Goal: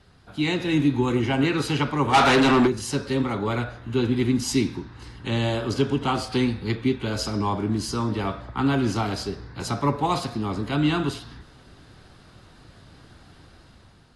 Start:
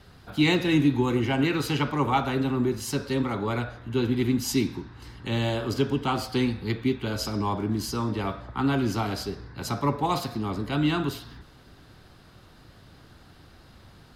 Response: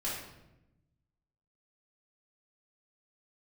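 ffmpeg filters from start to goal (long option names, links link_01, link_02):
-filter_complex "[0:a]dynaudnorm=framelen=290:gausssize=5:maxgain=6.5dB,asplit=3[link_01][link_02][link_03];[link_01]afade=type=out:start_time=2.13:duration=0.02[link_04];[link_02]asplit=2[link_05][link_06];[link_06]highpass=frequency=720:poles=1,volume=25dB,asoftclip=type=tanh:threshold=-5dB[link_07];[link_05][link_07]amix=inputs=2:normalize=0,lowpass=frequency=6800:poles=1,volume=-6dB,afade=type=in:start_time=2.13:duration=0.02,afade=type=out:start_time=2.66:duration=0.02[link_08];[link_03]afade=type=in:start_time=2.66:duration=0.02[link_09];[link_04][link_08][link_09]amix=inputs=3:normalize=0,volume=-4dB" -ar 24000 -c:a aac -b:a 48k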